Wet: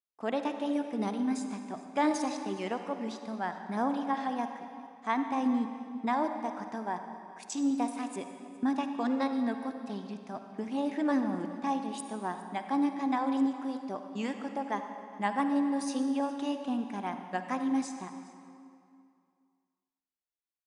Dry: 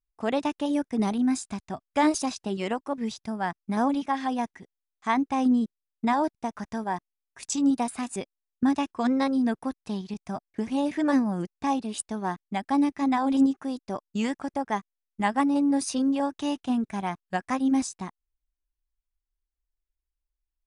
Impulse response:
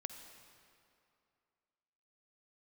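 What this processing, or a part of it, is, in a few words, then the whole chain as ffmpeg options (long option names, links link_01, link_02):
swimming-pool hall: -filter_complex "[0:a]highpass=220[link_01];[1:a]atrim=start_sample=2205[link_02];[link_01][link_02]afir=irnorm=-1:irlink=0,highshelf=frequency=5000:gain=-7,aecho=1:1:413:0.0891,volume=-1.5dB"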